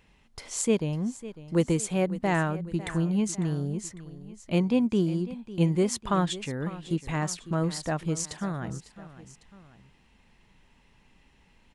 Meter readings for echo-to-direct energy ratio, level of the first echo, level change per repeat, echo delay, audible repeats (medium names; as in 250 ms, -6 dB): -15.0 dB, -16.0 dB, -5.0 dB, 551 ms, 2